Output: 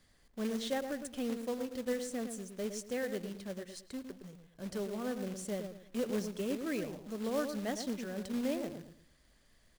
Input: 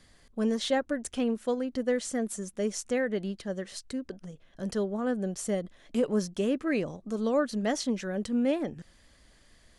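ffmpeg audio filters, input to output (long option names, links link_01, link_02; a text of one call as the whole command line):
ffmpeg -i in.wav -filter_complex "[0:a]asplit=2[link_01][link_02];[link_02]adelay=111,lowpass=frequency=1100:poles=1,volume=-6.5dB,asplit=2[link_03][link_04];[link_04]adelay=111,lowpass=frequency=1100:poles=1,volume=0.33,asplit=2[link_05][link_06];[link_06]adelay=111,lowpass=frequency=1100:poles=1,volume=0.33,asplit=2[link_07][link_08];[link_08]adelay=111,lowpass=frequency=1100:poles=1,volume=0.33[link_09];[link_01][link_03][link_05][link_07][link_09]amix=inputs=5:normalize=0,acrusher=bits=3:mode=log:mix=0:aa=0.000001,volume=-8.5dB" out.wav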